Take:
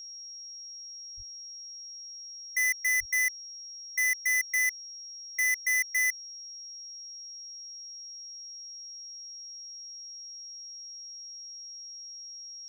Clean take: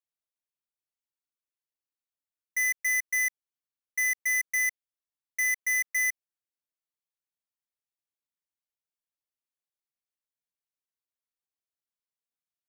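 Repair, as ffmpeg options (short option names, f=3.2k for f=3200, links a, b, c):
-filter_complex "[0:a]bandreject=f=5.6k:w=30,asplit=3[a][b][c];[a]afade=t=out:st=1.16:d=0.02[d];[b]highpass=f=140:w=0.5412,highpass=f=140:w=1.3066,afade=t=in:st=1.16:d=0.02,afade=t=out:st=1.28:d=0.02[e];[c]afade=t=in:st=1.28:d=0.02[f];[d][e][f]amix=inputs=3:normalize=0,asplit=3[g][h][i];[g]afade=t=out:st=2.99:d=0.02[j];[h]highpass=f=140:w=0.5412,highpass=f=140:w=1.3066,afade=t=in:st=2.99:d=0.02,afade=t=out:st=3.11:d=0.02[k];[i]afade=t=in:st=3.11:d=0.02[l];[j][k][l]amix=inputs=3:normalize=0"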